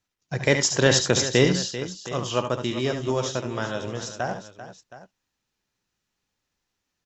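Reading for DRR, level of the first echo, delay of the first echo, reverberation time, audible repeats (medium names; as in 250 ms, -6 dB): no reverb, -7.0 dB, 71 ms, no reverb, 3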